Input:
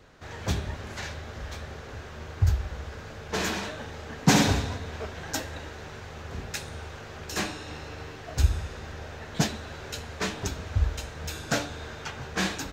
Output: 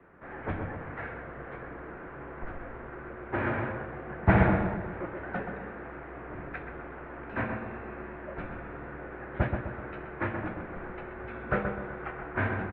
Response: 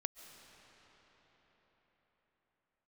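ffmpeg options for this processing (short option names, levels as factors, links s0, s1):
-filter_complex "[0:a]highpass=f=160:t=q:w=0.5412,highpass=f=160:t=q:w=1.307,lowpass=f=2200:t=q:w=0.5176,lowpass=f=2200:t=q:w=0.7071,lowpass=f=2200:t=q:w=1.932,afreqshift=-90,asplit=2[s0][s1];[s1]adelay=128,lowpass=f=1600:p=1,volume=0.596,asplit=2[s2][s3];[s3]adelay=128,lowpass=f=1600:p=1,volume=0.48,asplit=2[s4][s5];[s5]adelay=128,lowpass=f=1600:p=1,volume=0.48,asplit=2[s6][s7];[s7]adelay=128,lowpass=f=1600:p=1,volume=0.48,asplit=2[s8][s9];[s9]adelay=128,lowpass=f=1600:p=1,volume=0.48,asplit=2[s10][s11];[s11]adelay=128,lowpass=f=1600:p=1,volume=0.48[s12];[s0][s2][s4][s6][s8][s10][s12]amix=inputs=7:normalize=0"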